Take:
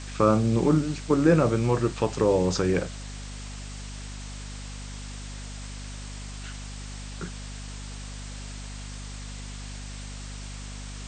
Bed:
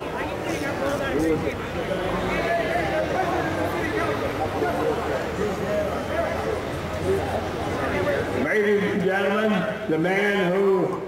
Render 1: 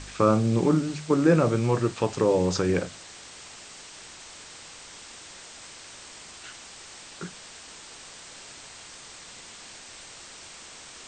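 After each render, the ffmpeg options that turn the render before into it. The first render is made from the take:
-af "bandreject=f=50:t=h:w=4,bandreject=f=100:t=h:w=4,bandreject=f=150:t=h:w=4,bandreject=f=200:t=h:w=4,bandreject=f=250:t=h:w=4"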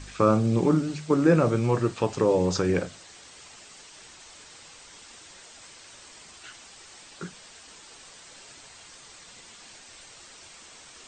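-af "afftdn=nr=6:nf=-46"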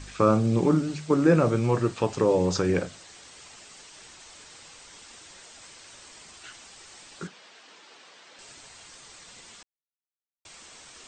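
-filter_complex "[0:a]asettb=1/sr,asplit=3[s0][s1][s2];[s0]atrim=end=7.274[s3];[s1]atrim=start=7.27:end=8.39,asetpts=PTS-STARTPTS,afade=t=in:d=0.004:c=qsin,afade=t=out:st=1.116:d=0.004:c=qsin,highpass=260,lowpass=4200[s4];[s2]atrim=start=8.386[s5];[s3][s4]acrossfade=d=0.004:c1=hsin:c2=qsin[s6];[s6][s5]acrossfade=d=0.004:c1=qsin:c2=hsin,asplit=3[s7][s8][s9];[s7]atrim=end=9.63,asetpts=PTS-STARTPTS,afade=t=out:st=9.626:d=0.004:c=hsin[s10];[s8]atrim=start=9.63:end=10.45,asetpts=PTS-STARTPTS,volume=0[s11];[s9]atrim=start=10.45,asetpts=PTS-STARTPTS,afade=t=in:d=0.004:c=hsin[s12];[s10][s11][s12]concat=n=3:v=0:a=1"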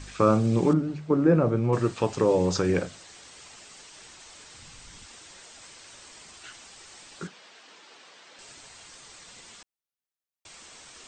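-filter_complex "[0:a]asettb=1/sr,asplit=3[s0][s1][s2];[s0]atrim=end=0.734[s3];[s1]atrim=start=0.73:end=1.73,asetpts=PTS-STARTPTS,afade=t=in:d=0.004:c=qsin,afade=t=out:st=0.996:d=0.004:c=qsin,lowpass=f=1000:p=1[s4];[s2]atrim=start=1.726[s5];[s3][s4]acrossfade=d=0.004:c1=hsin:c2=qsin[s6];[s6][s5]acrossfade=d=0.004:c1=qsin:c2=hsin,asplit=3[s7][s8][s9];[s7]afade=t=out:st=4.54:d=0.02[s10];[s8]asubboost=boost=5:cutoff=200,afade=t=in:st=4.54:d=0.02,afade=t=out:st=5.05:d=0.02[s11];[s9]afade=t=in:st=5.05:d=0.02[s12];[s10][s11][s12]amix=inputs=3:normalize=0"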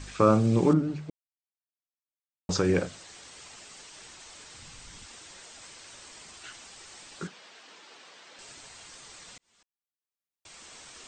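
-filter_complex "[0:a]asplit=4[s0][s1][s2][s3];[s0]atrim=end=1.1,asetpts=PTS-STARTPTS,afade=t=out:st=1.096:d=0.004:c=hsin[s4];[s1]atrim=start=1.1:end=2.49,asetpts=PTS-STARTPTS,volume=0[s5];[s2]atrim=start=2.49:end=9.38,asetpts=PTS-STARTPTS,afade=t=in:d=0.004:c=hsin,afade=t=out:st=6.886:d=0.004:c=hsin[s6];[s3]atrim=start=9.38,asetpts=PTS-STARTPTS,afade=t=in:d=1.37[s7];[s4][s5][s6][s7]concat=n=4:v=0:a=1"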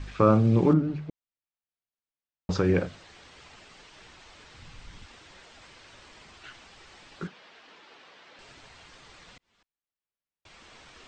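-af "lowpass=3600,lowshelf=f=110:g=7"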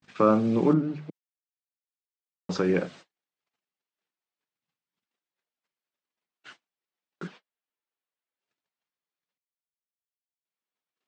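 -af "highpass=f=160:w=0.5412,highpass=f=160:w=1.3066,agate=range=0.00562:threshold=0.00501:ratio=16:detection=peak"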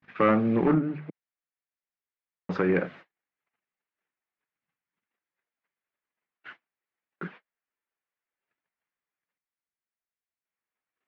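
-af "asoftclip=type=hard:threshold=0.15,lowpass=f=2000:t=q:w=1.8"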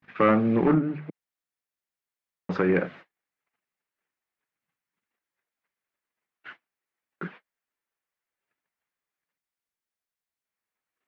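-af "volume=1.19"

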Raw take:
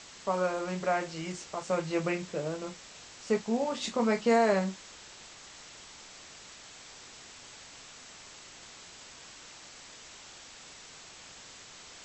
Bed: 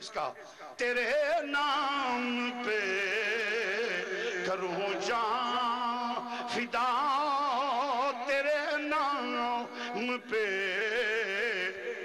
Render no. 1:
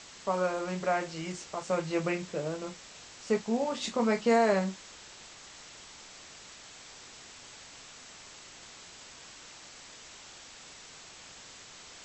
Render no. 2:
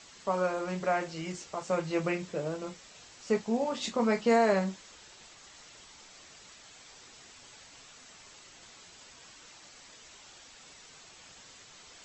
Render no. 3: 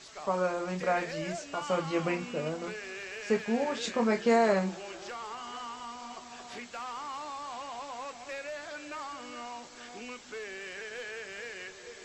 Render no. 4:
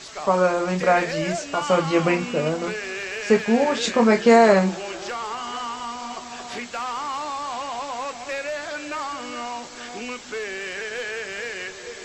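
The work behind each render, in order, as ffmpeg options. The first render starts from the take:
-af anull
-af "afftdn=nr=6:nf=-51"
-filter_complex "[1:a]volume=0.299[s0];[0:a][s0]amix=inputs=2:normalize=0"
-af "volume=3.35"

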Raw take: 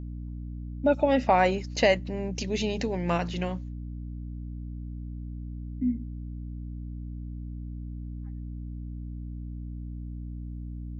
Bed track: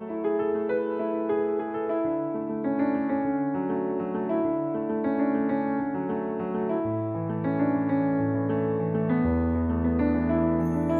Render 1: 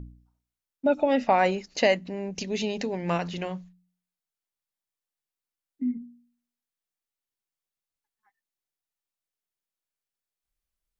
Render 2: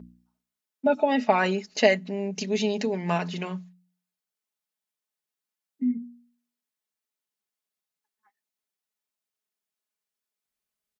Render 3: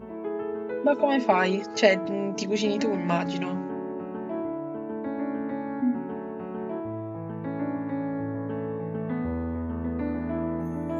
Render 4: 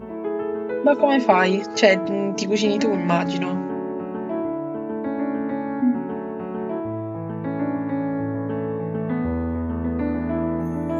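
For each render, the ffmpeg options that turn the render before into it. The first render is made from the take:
-af "bandreject=f=60:t=h:w=4,bandreject=f=120:t=h:w=4,bandreject=f=180:t=h:w=4,bandreject=f=240:t=h:w=4,bandreject=f=300:t=h:w=4"
-af "highpass=140,aecho=1:1:4.7:0.65"
-filter_complex "[1:a]volume=0.531[s0];[0:a][s0]amix=inputs=2:normalize=0"
-af "volume=1.88,alimiter=limit=0.891:level=0:latency=1"

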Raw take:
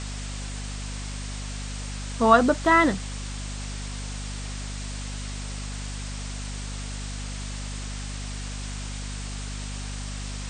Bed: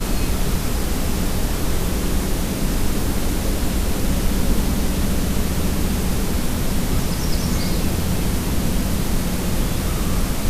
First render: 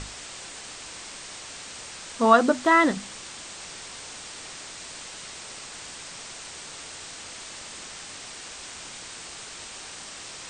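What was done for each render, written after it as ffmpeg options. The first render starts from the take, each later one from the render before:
-af "bandreject=f=50:t=h:w=6,bandreject=f=100:t=h:w=6,bandreject=f=150:t=h:w=6,bandreject=f=200:t=h:w=6,bandreject=f=250:t=h:w=6"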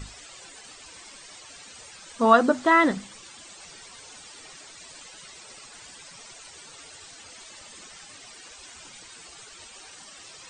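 -af "afftdn=nr=13:nf=-41"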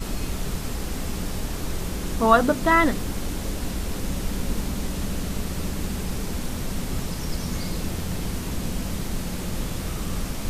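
-filter_complex "[1:a]volume=0.398[s0];[0:a][s0]amix=inputs=2:normalize=0"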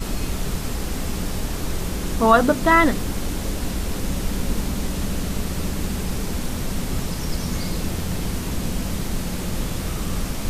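-af "volume=1.41,alimiter=limit=0.708:level=0:latency=1"

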